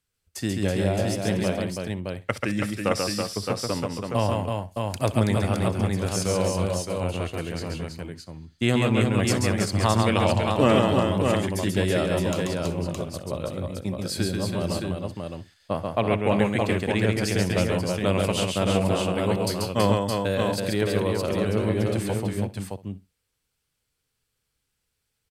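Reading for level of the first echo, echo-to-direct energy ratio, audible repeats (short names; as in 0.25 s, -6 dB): -18.0 dB, 0.5 dB, 7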